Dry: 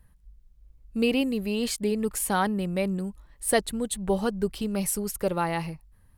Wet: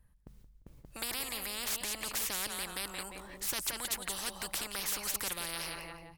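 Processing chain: gate with hold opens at -45 dBFS; feedback echo 0.174 s, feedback 28%, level -15.5 dB; spectral compressor 10:1; gain -8 dB

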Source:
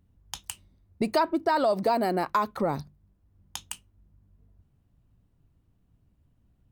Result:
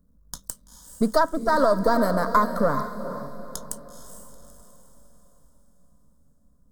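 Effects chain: half-wave gain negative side -7 dB; bell 2300 Hz -13 dB 1.1 oct; fixed phaser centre 530 Hz, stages 8; diffused feedback echo 0.452 s, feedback 44%, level -9 dB; dynamic EQ 1800 Hz, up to +7 dB, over -47 dBFS, Q 0.75; gain +8.5 dB

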